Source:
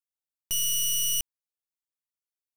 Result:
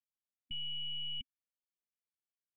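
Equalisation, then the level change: vocal tract filter i; brick-wall FIR band-stop 250–1700 Hz; +5.0 dB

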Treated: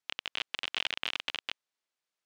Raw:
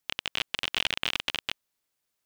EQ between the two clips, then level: HPF 190 Hz 6 dB/oct; air absorption 66 m; low shelf 390 Hz -5.5 dB; -3.5 dB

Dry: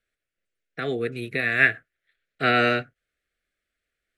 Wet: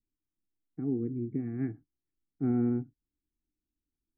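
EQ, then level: vocal tract filter u; low shelf 270 Hz +10 dB; fixed phaser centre 1400 Hz, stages 4; +5.0 dB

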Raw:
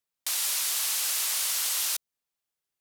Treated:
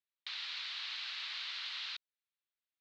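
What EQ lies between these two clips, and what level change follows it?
HPF 1500 Hz 12 dB/oct; elliptic low-pass 4100 Hz, stop band 70 dB; -4.5 dB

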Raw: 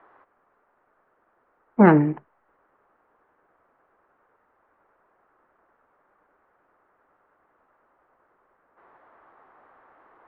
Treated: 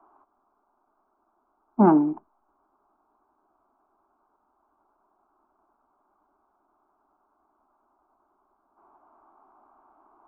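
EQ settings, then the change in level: LPF 1400 Hz 12 dB/oct; fixed phaser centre 500 Hz, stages 6; 0.0 dB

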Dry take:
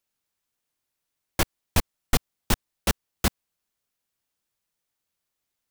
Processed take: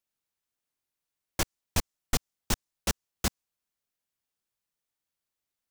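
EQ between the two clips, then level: dynamic EQ 6400 Hz, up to +6 dB, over -46 dBFS, Q 1.3; -6.0 dB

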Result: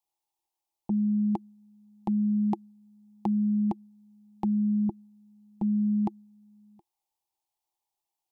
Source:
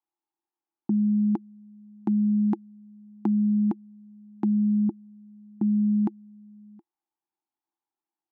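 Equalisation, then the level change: dynamic EQ 230 Hz, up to +6 dB, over -36 dBFS, Q 1.9; bell 310 Hz -6 dB 2.2 oct; fixed phaser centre 620 Hz, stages 4; +8.0 dB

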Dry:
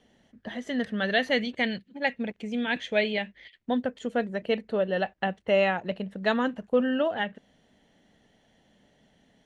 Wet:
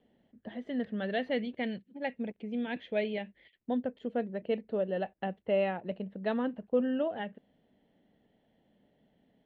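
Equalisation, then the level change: air absorption 440 m; low shelf 150 Hz -10.5 dB; bell 1400 Hz -9.5 dB 1.9 oct; 0.0 dB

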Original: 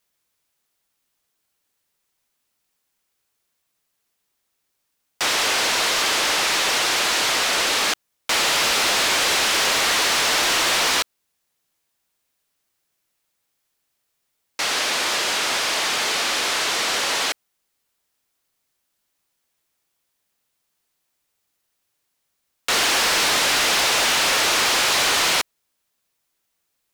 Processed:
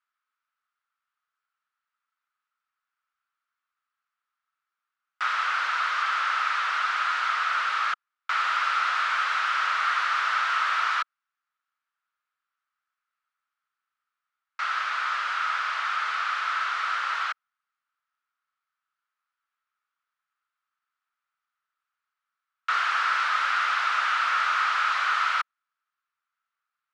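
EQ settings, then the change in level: ladder band-pass 1400 Hz, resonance 75%; +4.0 dB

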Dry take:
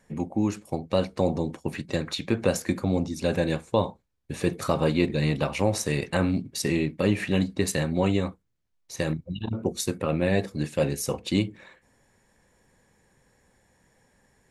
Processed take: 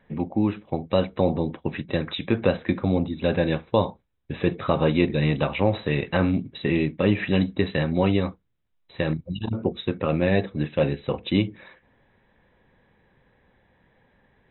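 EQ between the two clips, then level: brick-wall FIR low-pass 4000 Hz; +2.5 dB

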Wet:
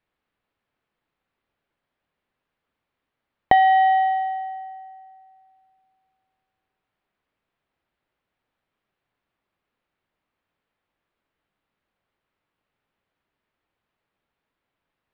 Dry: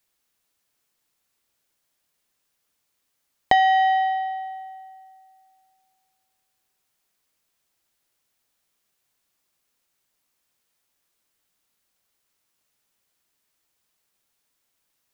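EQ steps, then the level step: air absorption 480 m; +4.0 dB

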